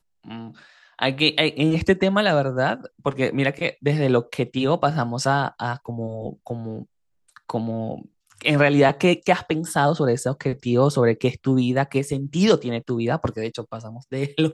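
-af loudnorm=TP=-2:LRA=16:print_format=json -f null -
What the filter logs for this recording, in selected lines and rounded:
"input_i" : "-22.1",
"input_tp" : "-3.8",
"input_lra" : "3.4",
"input_thresh" : "-32.7",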